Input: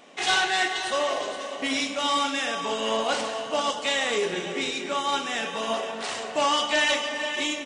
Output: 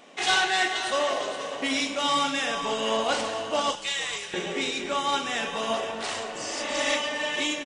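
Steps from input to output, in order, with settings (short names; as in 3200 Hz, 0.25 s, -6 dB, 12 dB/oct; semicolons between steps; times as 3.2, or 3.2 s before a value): 3.75–4.34 passive tone stack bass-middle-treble 10-0-10; 6.38–6.9 spectral repair 240–4400 Hz both; frequency-shifting echo 0.455 s, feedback 37%, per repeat -120 Hz, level -18.5 dB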